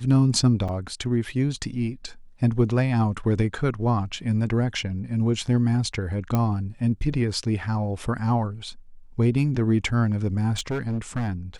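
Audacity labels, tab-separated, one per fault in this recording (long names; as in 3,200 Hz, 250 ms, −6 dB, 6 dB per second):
0.680000	0.690000	drop-out 5.9 ms
6.350000	6.350000	click −11 dBFS
10.530000	11.290000	clipping −22.5 dBFS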